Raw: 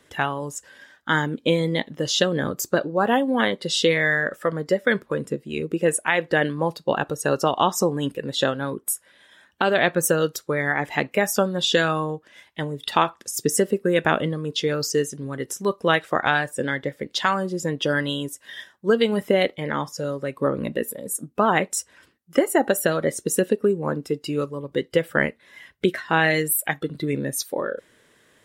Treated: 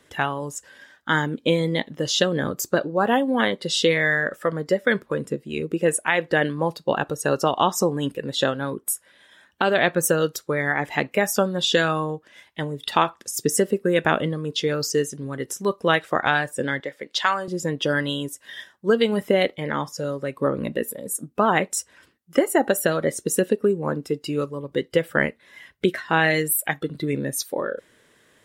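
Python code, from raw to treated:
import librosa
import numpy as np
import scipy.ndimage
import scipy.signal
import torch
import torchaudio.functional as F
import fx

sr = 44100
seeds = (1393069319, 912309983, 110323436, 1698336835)

y = fx.weighting(x, sr, curve='A', at=(16.8, 17.48))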